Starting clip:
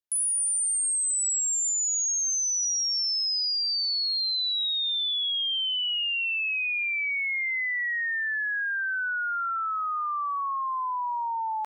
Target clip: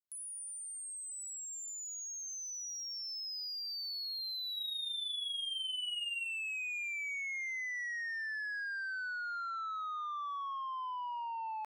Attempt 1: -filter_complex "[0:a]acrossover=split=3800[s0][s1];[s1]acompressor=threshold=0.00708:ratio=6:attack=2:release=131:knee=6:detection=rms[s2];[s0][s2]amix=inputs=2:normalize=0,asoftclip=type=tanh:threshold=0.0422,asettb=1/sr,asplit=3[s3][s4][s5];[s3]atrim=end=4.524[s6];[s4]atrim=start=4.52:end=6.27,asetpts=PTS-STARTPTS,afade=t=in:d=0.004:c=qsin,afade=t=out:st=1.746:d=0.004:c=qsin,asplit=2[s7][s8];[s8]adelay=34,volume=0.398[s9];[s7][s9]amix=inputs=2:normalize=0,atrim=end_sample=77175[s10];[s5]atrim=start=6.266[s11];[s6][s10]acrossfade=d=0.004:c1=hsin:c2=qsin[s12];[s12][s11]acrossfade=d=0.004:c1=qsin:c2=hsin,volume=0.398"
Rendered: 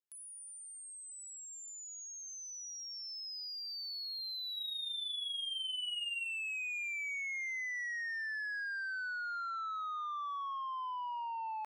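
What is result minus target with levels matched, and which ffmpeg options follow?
compression: peak gain reduction +6.5 dB
-filter_complex "[0:a]acrossover=split=3800[s0][s1];[s1]acompressor=threshold=0.0168:ratio=6:attack=2:release=131:knee=6:detection=rms[s2];[s0][s2]amix=inputs=2:normalize=0,asoftclip=type=tanh:threshold=0.0422,asettb=1/sr,asplit=3[s3][s4][s5];[s3]atrim=end=4.524[s6];[s4]atrim=start=4.52:end=6.27,asetpts=PTS-STARTPTS,afade=t=in:d=0.004:c=qsin,afade=t=out:st=1.746:d=0.004:c=qsin,asplit=2[s7][s8];[s8]adelay=34,volume=0.398[s9];[s7][s9]amix=inputs=2:normalize=0,atrim=end_sample=77175[s10];[s5]atrim=start=6.266[s11];[s6][s10]acrossfade=d=0.004:c1=hsin:c2=qsin[s12];[s12][s11]acrossfade=d=0.004:c1=qsin:c2=hsin,volume=0.398"

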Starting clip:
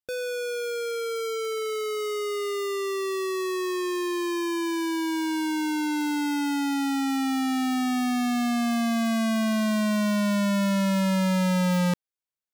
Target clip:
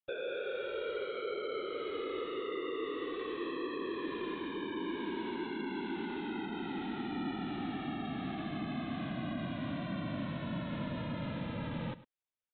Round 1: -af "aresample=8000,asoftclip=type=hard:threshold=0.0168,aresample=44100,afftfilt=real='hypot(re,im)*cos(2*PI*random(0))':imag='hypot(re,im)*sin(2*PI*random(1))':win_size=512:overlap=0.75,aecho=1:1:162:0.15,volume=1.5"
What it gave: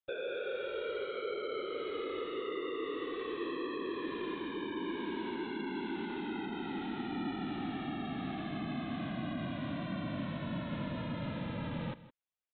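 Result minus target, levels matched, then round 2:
echo 59 ms late
-af "aresample=8000,asoftclip=type=hard:threshold=0.0168,aresample=44100,afftfilt=real='hypot(re,im)*cos(2*PI*random(0))':imag='hypot(re,im)*sin(2*PI*random(1))':win_size=512:overlap=0.75,aecho=1:1:103:0.15,volume=1.5"

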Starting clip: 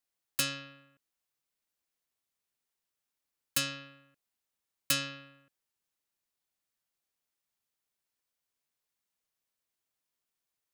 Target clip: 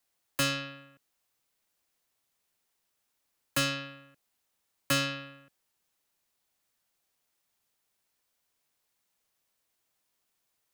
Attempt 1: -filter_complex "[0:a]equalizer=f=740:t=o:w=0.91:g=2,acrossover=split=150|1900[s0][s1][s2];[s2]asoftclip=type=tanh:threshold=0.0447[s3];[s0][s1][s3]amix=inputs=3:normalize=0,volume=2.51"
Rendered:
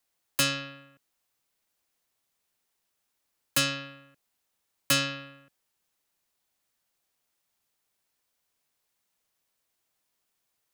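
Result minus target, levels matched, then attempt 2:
saturation: distortion -6 dB
-filter_complex "[0:a]equalizer=f=740:t=o:w=0.91:g=2,acrossover=split=150|1900[s0][s1][s2];[s2]asoftclip=type=tanh:threshold=0.0158[s3];[s0][s1][s3]amix=inputs=3:normalize=0,volume=2.51"

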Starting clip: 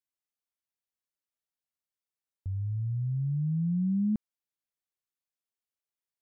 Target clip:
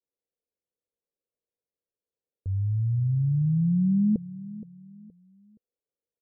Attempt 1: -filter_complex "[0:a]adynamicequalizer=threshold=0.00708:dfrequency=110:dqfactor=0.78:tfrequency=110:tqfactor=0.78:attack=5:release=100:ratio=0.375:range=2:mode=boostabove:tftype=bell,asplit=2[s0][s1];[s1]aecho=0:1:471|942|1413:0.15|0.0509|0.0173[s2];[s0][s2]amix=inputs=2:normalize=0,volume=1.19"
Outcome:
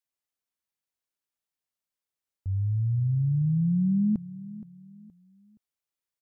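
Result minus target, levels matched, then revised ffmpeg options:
500 Hz band -8.0 dB
-filter_complex "[0:a]adynamicequalizer=threshold=0.00708:dfrequency=110:dqfactor=0.78:tfrequency=110:tqfactor=0.78:attack=5:release=100:ratio=0.375:range=2:mode=boostabove:tftype=bell,lowpass=f=480:t=q:w=5,asplit=2[s0][s1];[s1]aecho=0:1:471|942|1413:0.15|0.0509|0.0173[s2];[s0][s2]amix=inputs=2:normalize=0,volume=1.19"

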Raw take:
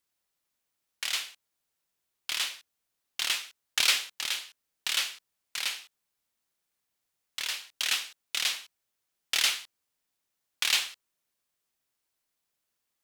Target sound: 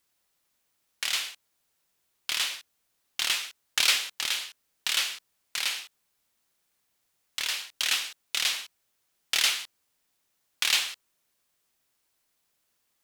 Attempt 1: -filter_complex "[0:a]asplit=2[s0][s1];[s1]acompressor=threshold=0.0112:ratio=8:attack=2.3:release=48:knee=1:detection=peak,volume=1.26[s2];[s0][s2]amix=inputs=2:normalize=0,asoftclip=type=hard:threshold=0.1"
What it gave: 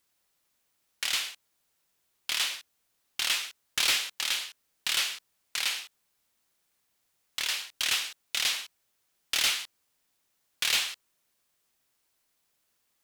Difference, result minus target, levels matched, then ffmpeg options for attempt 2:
hard clipper: distortion +27 dB
-filter_complex "[0:a]asplit=2[s0][s1];[s1]acompressor=threshold=0.0112:ratio=8:attack=2.3:release=48:knee=1:detection=peak,volume=1.26[s2];[s0][s2]amix=inputs=2:normalize=0,asoftclip=type=hard:threshold=0.335"

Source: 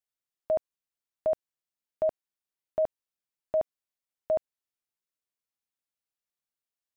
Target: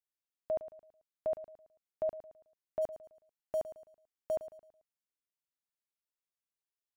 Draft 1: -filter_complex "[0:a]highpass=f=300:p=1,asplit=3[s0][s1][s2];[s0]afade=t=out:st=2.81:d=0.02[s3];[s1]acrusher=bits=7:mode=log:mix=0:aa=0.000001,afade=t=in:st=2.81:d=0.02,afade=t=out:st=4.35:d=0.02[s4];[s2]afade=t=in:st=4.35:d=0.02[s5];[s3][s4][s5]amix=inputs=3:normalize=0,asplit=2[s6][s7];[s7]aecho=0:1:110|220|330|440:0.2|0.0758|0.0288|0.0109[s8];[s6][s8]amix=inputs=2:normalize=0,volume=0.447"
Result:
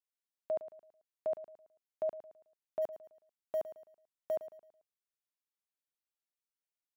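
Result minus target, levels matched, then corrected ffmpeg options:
250 Hz band -2.5 dB
-filter_complex "[0:a]asplit=3[s0][s1][s2];[s0]afade=t=out:st=2.81:d=0.02[s3];[s1]acrusher=bits=7:mode=log:mix=0:aa=0.000001,afade=t=in:st=2.81:d=0.02,afade=t=out:st=4.35:d=0.02[s4];[s2]afade=t=in:st=4.35:d=0.02[s5];[s3][s4][s5]amix=inputs=3:normalize=0,asplit=2[s6][s7];[s7]aecho=0:1:110|220|330|440:0.2|0.0758|0.0288|0.0109[s8];[s6][s8]amix=inputs=2:normalize=0,volume=0.447"

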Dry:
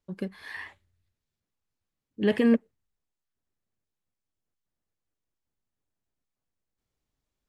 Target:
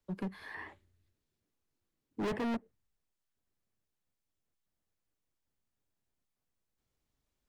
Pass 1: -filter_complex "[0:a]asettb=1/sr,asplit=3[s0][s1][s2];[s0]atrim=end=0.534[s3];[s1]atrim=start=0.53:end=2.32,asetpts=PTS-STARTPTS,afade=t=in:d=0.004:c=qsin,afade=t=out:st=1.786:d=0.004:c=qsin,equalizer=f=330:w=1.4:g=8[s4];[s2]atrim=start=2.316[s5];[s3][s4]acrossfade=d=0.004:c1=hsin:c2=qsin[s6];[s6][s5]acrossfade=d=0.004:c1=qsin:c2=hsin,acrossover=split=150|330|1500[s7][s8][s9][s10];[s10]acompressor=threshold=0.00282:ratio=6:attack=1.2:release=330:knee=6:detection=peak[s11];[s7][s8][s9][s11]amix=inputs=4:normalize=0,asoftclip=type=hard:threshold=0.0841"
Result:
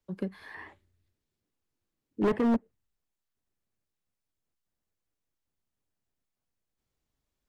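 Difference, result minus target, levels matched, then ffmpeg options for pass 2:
hard clipper: distortion -5 dB
-filter_complex "[0:a]asettb=1/sr,asplit=3[s0][s1][s2];[s0]atrim=end=0.534[s3];[s1]atrim=start=0.53:end=2.32,asetpts=PTS-STARTPTS,afade=t=in:d=0.004:c=qsin,afade=t=out:st=1.786:d=0.004:c=qsin,equalizer=f=330:w=1.4:g=8[s4];[s2]atrim=start=2.316[s5];[s3][s4]acrossfade=d=0.004:c1=hsin:c2=qsin[s6];[s6][s5]acrossfade=d=0.004:c1=qsin:c2=hsin,acrossover=split=150|330|1500[s7][s8][s9][s10];[s10]acompressor=threshold=0.00282:ratio=6:attack=1.2:release=330:knee=6:detection=peak[s11];[s7][s8][s9][s11]amix=inputs=4:normalize=0,asoftclip=type=hard:threshold=0.0251"

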